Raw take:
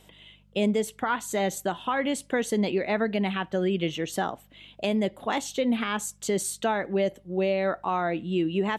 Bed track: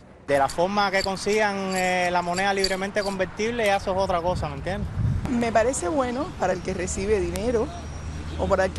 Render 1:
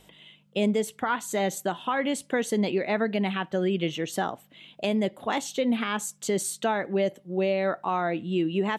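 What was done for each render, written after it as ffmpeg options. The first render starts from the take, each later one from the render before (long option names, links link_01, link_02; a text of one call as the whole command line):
ffmpeg -i in.wav -af "bandreject=frequency=50:width_type=h:width=4,bandreject=frequency=100:width_type=h:width=4" out.wav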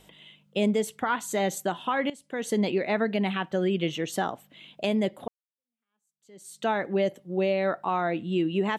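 ffmpeg -i in.wav -filter_complex "[0:a]asettb=1/sr,asplit=3[link_01][link_02][link_03];[link_01]atrim=end=7.534[link_04];[link_02]atrim=start=7.53:end=7.99,asetpts=PTS-STARTPTS,afade=type=in:duration=0.004:curve=qsin,afade=type=out:start_time=0.456:duration=0.004:curve=qsin,bandreject=frequency=6200:width=12[link_05];[link_03]atrim=start=7.986[link_06];[link_04][link_05]acrossfade=duration=0.004:curve1=hsin:curve2=qsin[link_07];[link_07][link_06]acrossfade=duration=0.004:curve1=qsin:curve2=hsin,asplit=3[link_08][link_09][link_10];[link_08]atrim=end=2.1,asetpts=PTS-STARTPTS,afade=type=out:start_time=2.096:duration=0.004:curve=hsin:silence=0.141254[link_11];[link_09]atrim=start=2.1:end=5.28,asetpts=PTS-STARTPTS,afade=type=in:duration=0.42:curve=qua:silence=0.141254,afade=type=out:start_time=3.176:duration=0.004:curve=hsin[link_12];[link_10]atrim=start=5.28,asetpts=PTS-STARTPTS,afade=type=in:duration=1.4:curve=exp[link_13];[link_11][link_12][link_13]concat=n=3:v=0:a=1" out.wav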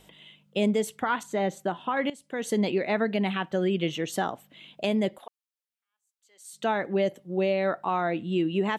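ffmpeg -i in.wav -filter_complex "[0:a]asettb=1/sr,asplit=3[link_01][link_02][link_03];[link_01]atrim=end=1.234[link_04];[link_02]atrim=start=1.23:end=1.97,asetpts=PTS-STARTPTS,afade=type=in:duration=0.004:curve=qsin,afade=type=out:start_time=0.736:duration=0.004:curve=qsin,lowpass=frequency=1800:poles=1[link_05];[link_03]atrim=start=1.966[link_06];[link_04][link_05]acrossfade=duration=0.004:curve1=hsin:curve2=qsin[link_07];[link_07][link_06]acrossfade=duration=0.004:curve1=qsin:curve2=hsin,asettb=1/sr,asplit=3[link_08][link_09][link_10];[link_08]atrim=end=5.184[link_11];[link_09]atrim=start=5.18:end=6.53,asetpts=PTS-STARTPTS,afade=type=in:duration=0.004:curve=qsin,afade=type=out:start_time=1.346:duration=0.004:curve=qsin,highpass=1000[link_12];[link_10]atrim=start=6.526[link_13];[link_11][link_12]acrossfade=duration=0.004:curve1=hsin:curve2=qsin[link_14];[link_14][link_13]acrossfade=duration=0.004:curve1=qsin:curve2=hsin" out.wav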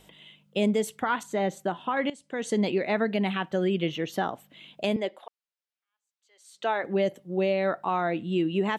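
ffmpeg -i in.wav -filter_complex "[0:a]asettb=1/sr,asplit=3[link_01][link_02][link_03];[link_01]atrim=end=1.924[link_04];[link_02]atrim=start=1.92:end=2.64,asetpts=PTS-STARTPTS,afade=type=in:duration=0.004:curve=qsin,afade=type=out:start_time=0.716:duration=0.004:curve=qsin,lowpass=frequency=9500:width=0.5412,lowpass=frequency=9500:width=1.3066[link_05];[link_03]atrim=start=2.636[link_06];[link_04][link_05]acrossfade=duration=0.004:curve1=hsin:curve2=qsin[link_07];[link_07][link_06]acrossfade=duration=0.004:curve1=qsin:curve2=hsin,asettb=1/sr,asplit=3[link_08][link_09][link_10];[link_08]atrim=end=3.814[link_11];[link_09]atrim=start=3.81:end=4.33,asetpts=PTS-STARTPTS,afade=type=in:duration=0.004:curve=qsin,afade=type=out:start_time=0.516:duration=0.004:curve=qsin,equalizer=frequency=8500:width_type=o:width=0.75:gain=-14.5[link_12];[link_10]atrim=start=4.326[link_13];[link_11][link_12]acrossfade=duration=0.004:curve1=hsin:curve2=qsin[link_14];[link_14][link_13]acrossfade=duration=0.004:curve1=qsin:curve2=hsin,asettb=1/sr,asplit=3[link_15][link_16][link_17];[link_15]atrim=end=4.964[link_18];[link_16]atrim=start=4.96:end=6.84,asetpts=PTS-STARTPTS,afade=type=in:duration=0.004:curve=qsin,afade=type=out:start_time=1.876:duration=0.004:curve=qsin,acrossover=split=310 6000:gain=0.0708 1 0.224[link_19][link_20][link_21];[link_19][link_20][link_21]amix=inputs=3:normalize=0[link_22];[link_17]atrim=start=6.836[link_23];[link_18][link_22]acrossfade=duration=0.004:curve1=hsin:curve2=qsin[link_24];[link_24][link_23]acrossfade=duration=0.004:curve1=qsin:curve2=hsin" out.wav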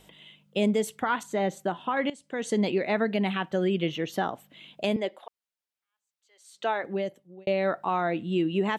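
ffmpeg -i in.wav -filter_complex "[0:a]asplit=2[link_01][link_02];[link_01]atrim=end=7.47,asetpts=PTS-STARTPTS,afade=type=out:start_time=6.65:duration=0.82[link_03];[link_02]atrim=start=7.47,asetpts=PTS-STARTPTS,afade=type=in:duration=0.004:curve=hsin[link_04];[link_03][link_04]concat=n=2:v=0:a=1" out.wav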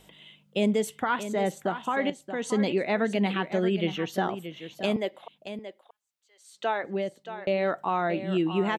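ffmpeg -i in.wav -af "aecho=1:1:627:0.282" out.wav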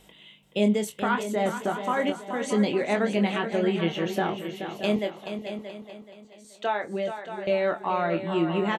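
ffmpeg -i in.wav -filter_complex "[0:a]asplit=2[link_01][link_02];[link_02]adelay=24,volume=-7dB[link_03];[link_01][link_03]amix=inputs=2:normalize=0,asplit=2[link_04][link_05];[link_05]aecho=0:1:428|856|1284|1712:0.335|0.137|0.0563|0.0231[link_06];[link_04][link_06]amix=inputs=2:normalize=0" out.wav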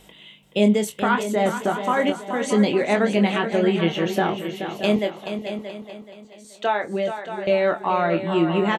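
ffmpeg -i in.wav -af "volume=5dB" out.wav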